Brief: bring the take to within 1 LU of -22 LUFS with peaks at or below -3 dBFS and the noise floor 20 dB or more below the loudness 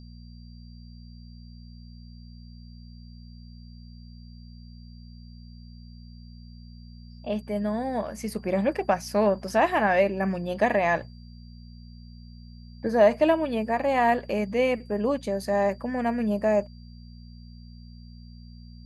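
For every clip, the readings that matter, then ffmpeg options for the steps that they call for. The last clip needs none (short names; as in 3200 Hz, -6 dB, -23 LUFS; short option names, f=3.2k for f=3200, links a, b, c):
hum 60 Hz; harmonics up to 240 Hz; hum level -42 dBFS; steady tone 4700 Hz; tone level -58 dBFS; loudness -25.0 LUFS; peak -8.5 dBFS; loudness target -22.0 LUFS
-> -af "bandreject=f=60:t=h:w=4,bandreject=f=120:t=h:w=4,bandreject=f=180:t=h:w=4,bandreject=f=240:t=h:w=4"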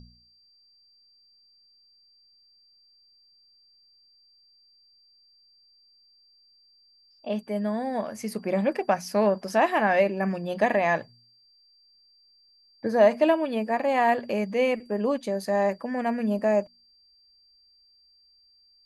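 hum none; steady tone 4700 Hz; tone level -58 dBFS
-> -af "bandreject=f=4.7k:w=30"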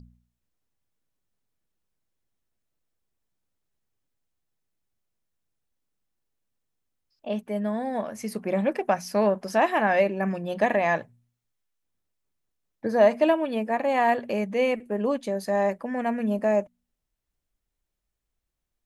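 steady tone none; loudness -25.5 LUFS; peak -8.0 dBFS; loudness target -22.0 LUFS
-> -af "volume=3.5dB"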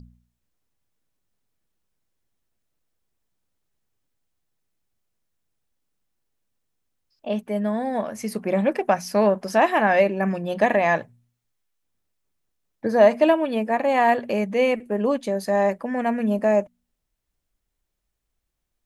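loudness -22.0 LUFS; peak -4.5 dBFS; noise floor -79 dBFS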